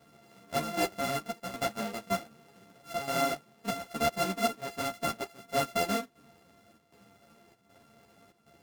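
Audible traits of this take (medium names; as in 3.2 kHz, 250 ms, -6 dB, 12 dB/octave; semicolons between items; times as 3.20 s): a buzz of ramps at a fixed pitch in blocks of 64 samples; chopped level 1.3 Hz, depth 65%, duty 80%; a shimmering, thickened sound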